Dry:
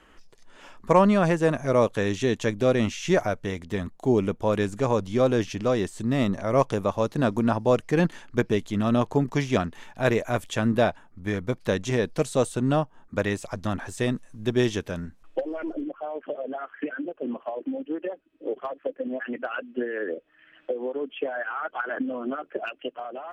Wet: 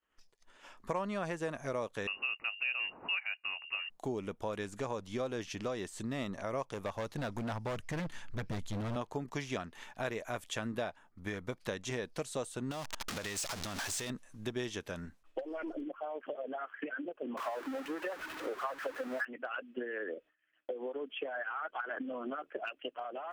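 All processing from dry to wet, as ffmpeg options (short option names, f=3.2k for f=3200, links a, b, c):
-filter_complex "[0:a]asettb=1/sr,asplit=3[a][b][c];[a]atrim=end=2.074[d];[b]atrim=start=2.07:end=3.9,asetpts=PTS-STARTPTS,afade=t=in:d=0.004:c=qsin,afade=t=out:st=1.826:d=0.004:c=qsin,highpass=f=140:w=0.5412,highpass=f=140:w=1.3066,lowpass=f=2.6k:t=q:w=0.5098,lowpass=f=2.6k:t=q:w=0.6013,lowpass=f=2.6k:t=q:w=0.9,lowpass=f=2.6k:t=q:w=2.563,afreqshift=-3000[e];[c]atrim=start=3.896[f];[d][e]acrossfade=d=0.004:c1=hsin:c2=qsin[g];[g][f]acrossfade=d=0.004:c1=qsin:c2=hsin,asettb=1/sr,asplit=3[h][i][j];[h]atrim=end=6.744[k];[i]atrim=start=6.74:end=8.96,asetpts=PTS-STARTPTS,afade=t=in:d=0.004:c=qsin,afade=t=out:st=2.216:d=0.004:c=qsin,asubboost=boost=10.5:cutoff=150,asoftclip=type=hard:threshold=-21dB[l];[j]atrim=start=8.956[m];[k][l]acrossfade=d=0.004:c1=hsin:c2=qsin[n];[n][m]acrossfade=d=0.004:c1=qsin:c2=hsin,asettb=1/sr,asplit=3[o][p][q];[o]atrim=end=12.714[r];[p]atrim=start=12.71:end=14.1,asetpts=PTS-STARTPTS,afade=t=in:d=0.004:c=qsin,afade=t=out:st=1.386:d=0.004:c=qsin,aeval=exprs='val(0)+0.5*0.0501*sgn(val(0))':c=same,equalizer=f=5.3k:w=0.57:g=8.5,acompressor=threshold=-26dB:ratio=12:attack=3.2:release=140:knee=1:detection=peak[s];[q]atrim=start=14.096[t];[r][s]acrossfade=d=0.004:c1=hsin:c2=qsin[u];[u][t]acrossfade=d=0.004:c1=qsin:c2=hsin,asettb=1/sr,asplit=3[v][w][x];[v]atrim=end=17.374[y];[w]atrim=start=17.37:end=19.25,asetpts=PTS-STARTPTS,afade=t=in:d=0.004:c=qsin,afade=t=out:st=1.876:d=0.004:c=qsin,aeval=exprs='val(0)+0.5*0.0119*sgn(val(0))':c=same,equalizer=f=1.4k:t=o:w=1.6:g=12[z];[x]atrim=start=19.246[aa];[y][z]acrossfade=d=0.004:c1=hsin:c2=qsin[ab];[ab][aa]acrossfade=d=0.004:c1=qsin:c2=hsin,agate=range=-33dB:threshold=-42dB:ratio=3:detection=peak,lowshelf=f=460:g=-8,acompressor=threshold=-35dB:ratio=3,volume=-1.5dB"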